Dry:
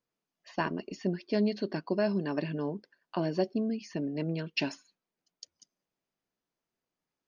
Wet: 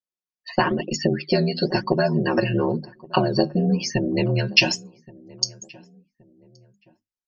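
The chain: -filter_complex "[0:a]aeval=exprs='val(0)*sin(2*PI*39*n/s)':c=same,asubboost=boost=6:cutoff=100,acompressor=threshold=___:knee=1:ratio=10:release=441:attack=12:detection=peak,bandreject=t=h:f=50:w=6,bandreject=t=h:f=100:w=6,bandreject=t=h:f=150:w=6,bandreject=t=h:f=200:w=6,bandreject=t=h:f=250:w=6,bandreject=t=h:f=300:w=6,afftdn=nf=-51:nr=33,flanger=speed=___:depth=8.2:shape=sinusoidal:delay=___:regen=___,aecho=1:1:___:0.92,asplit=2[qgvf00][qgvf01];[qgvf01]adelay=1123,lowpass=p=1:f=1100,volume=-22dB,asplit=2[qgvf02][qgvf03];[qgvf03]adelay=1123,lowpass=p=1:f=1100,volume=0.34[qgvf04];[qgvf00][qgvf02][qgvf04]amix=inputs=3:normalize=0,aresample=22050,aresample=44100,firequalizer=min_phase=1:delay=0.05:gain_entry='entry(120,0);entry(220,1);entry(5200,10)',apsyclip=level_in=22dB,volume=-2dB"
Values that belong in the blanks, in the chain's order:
-34dB, 1, 1.1, 72, 5.5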